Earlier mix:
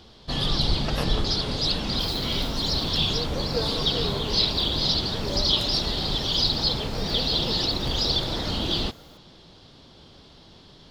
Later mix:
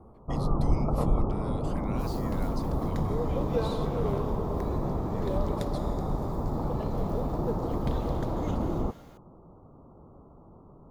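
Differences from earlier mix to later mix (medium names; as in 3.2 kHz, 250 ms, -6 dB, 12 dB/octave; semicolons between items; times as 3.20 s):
first sound: add steep low-pass 1.3 kHz 96 dB/octave; master: add treble shelf 3.8 kHz -7.5 dB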